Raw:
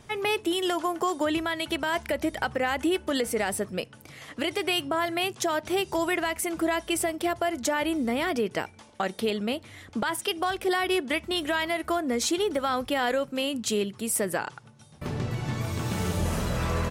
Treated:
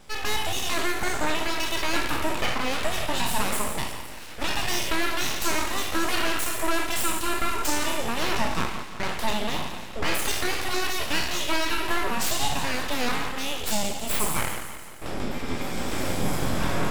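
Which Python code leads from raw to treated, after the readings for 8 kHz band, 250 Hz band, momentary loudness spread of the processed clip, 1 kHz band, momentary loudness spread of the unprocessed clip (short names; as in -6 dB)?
+4.5 dB, -3.0 dB, 6 LU, +1.5 dB, 6 LU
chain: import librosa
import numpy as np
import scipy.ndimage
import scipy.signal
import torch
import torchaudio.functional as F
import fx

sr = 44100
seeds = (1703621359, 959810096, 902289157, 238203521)

p1 = fx.spec_trails(x, sr, decay_s=0.94)
p2 = fx.ripple_eq(p1, sr, per_octave=1.7, db=9)
p3 = p2 + fx.echo_feedback(p2, sr, ms=172, feedback_pct=58, wet_db=-11.5, dry=0)
y = np.abs(p3)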